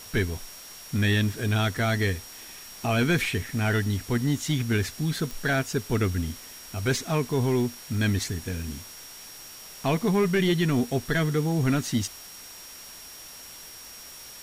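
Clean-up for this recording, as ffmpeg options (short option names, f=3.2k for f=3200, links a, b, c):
-af "adeclick=t=4,bandreject=f=5.6k:w=30,afftdn=nr=28:nf=-44"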